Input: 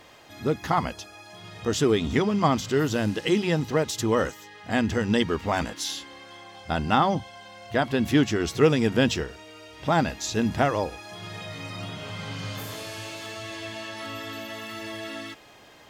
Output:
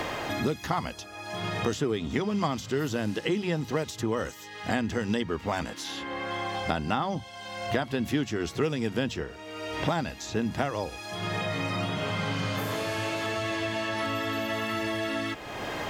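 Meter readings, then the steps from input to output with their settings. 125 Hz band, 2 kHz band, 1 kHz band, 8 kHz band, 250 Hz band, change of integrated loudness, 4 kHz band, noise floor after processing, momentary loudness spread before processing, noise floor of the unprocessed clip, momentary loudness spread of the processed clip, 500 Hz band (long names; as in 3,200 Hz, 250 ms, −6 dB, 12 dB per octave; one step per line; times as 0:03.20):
−3.5 dB, −1.0 dB, −3.5 dB, −5.0 dB, −4.0 dB, −4.0 dB, −2.0 dB, −44 dBFS, 17 LU, −50 dBFS, 6 LU, −4.0 dB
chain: multiband upward and downward compressor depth 100%
level −5 dB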